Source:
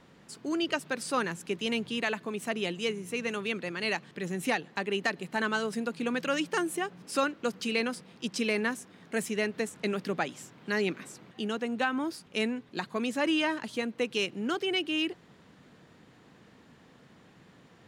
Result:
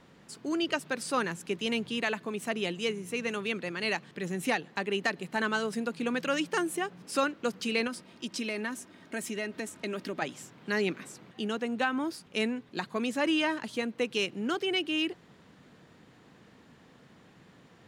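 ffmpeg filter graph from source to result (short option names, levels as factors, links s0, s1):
-filter_complex "[0:a]asettb=1/sr,asplit=3[s0][s1][s2];[s0]atrim=end=7.874[s3];[s1]atrim=start=7.87:end=10.22,asetpts=PTS-STARTPTS,afade=t=in:d=0.004:c=qsin,afade=t=out:st=2.346:d=0.004:c=qsin,aecho=1:1:3.2:0.44,atrim=end_sample=103635,acompressor=threshold=0.0224:ratio=2:attack=3.2:release=140:knee=1:detection=peak[s4];[s2]atrim=start=10.216[s5];[s3][s4]acrossfade=d=0.004:c1=hsin:c2=qsin[s6];[s6][s5]acrossfade=d=0.004:c1=qsin:c2=hsin"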